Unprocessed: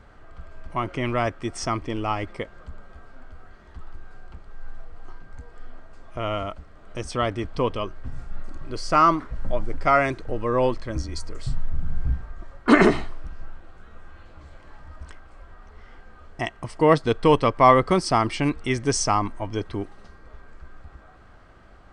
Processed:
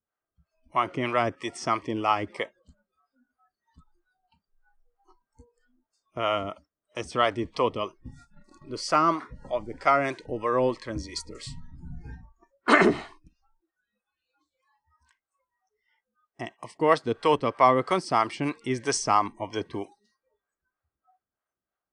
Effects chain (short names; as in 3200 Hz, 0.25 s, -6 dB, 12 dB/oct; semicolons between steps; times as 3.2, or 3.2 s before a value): spectral noise reduction 29 dB; in parallel at +2 dB: vocal rider within 5 dB 2 s; on the sum: HPF 270 Hz 6 dB/oct; gate -40 dBFS, range -9 dB; harmonic tremolo 3.1 Hz, depth 70%, crossover 460 Hz; gain -5.5 dB